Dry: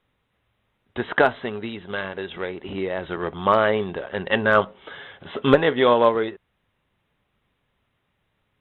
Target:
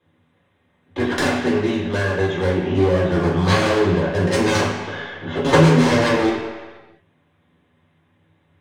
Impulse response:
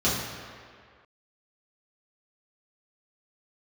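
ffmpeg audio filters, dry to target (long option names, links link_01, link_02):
-filter_complex "[0:a]aeval=exprs='0.631*(cos(1*acos(clip(val(0)/0.631,-1,1)))-cos(1*PI/2))+0.2*(cos(6*acos(clip(val(0)/0.631,-1,1)))-cos(6*PI/2))':channel_layout=same,aeval=exprs='clip(val(0),-1,0.0891)':channel_layout=same[link_01];[1:a]atrim=start_sample=2205,asetrate=61740,aresample=44100[link_02];[link_01][link_02]afir=irnorm=-1:irlink=0,volume=-4.5dB"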